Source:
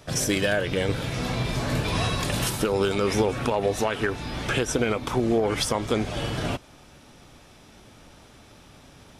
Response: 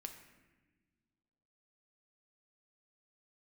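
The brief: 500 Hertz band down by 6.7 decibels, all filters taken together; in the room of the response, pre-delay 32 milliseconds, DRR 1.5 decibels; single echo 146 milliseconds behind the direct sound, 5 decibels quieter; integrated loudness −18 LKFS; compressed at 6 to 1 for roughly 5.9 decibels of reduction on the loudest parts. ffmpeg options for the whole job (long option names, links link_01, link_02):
-filter_complex "[0:a]equalizer=frequency=500:width_type=o:gain=-8.5,acompressor=threshold=-28dB:ratio=6,aecho=1:1:146:0.562,asplit=2[link_01][link_02];[1:a]atrim=start_sample=2205,adelay=32[link_03];[link_02][link_03]afir=irnorm=-1:irlink=0,volume=2.5dB[link_04];[link_01][link_04]amix=inputs=2:normalize=0,volume=10.5dB"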